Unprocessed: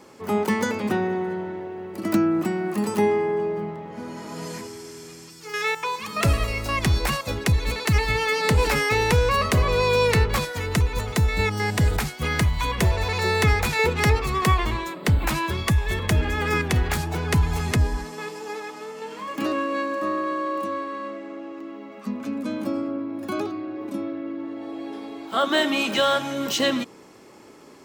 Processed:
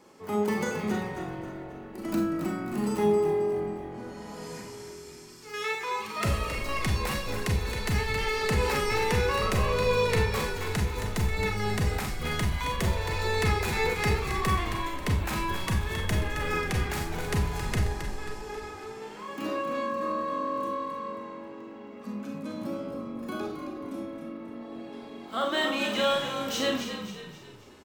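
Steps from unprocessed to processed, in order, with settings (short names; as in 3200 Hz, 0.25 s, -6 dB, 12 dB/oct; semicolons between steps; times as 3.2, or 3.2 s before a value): frequency-shifting echo 0.269 s, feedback 43%, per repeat -46 Hz, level -8 dB; Schroeder reverb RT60 0.35 s, combs from 30 ms, DRR 2 dB; gain -8.5 dB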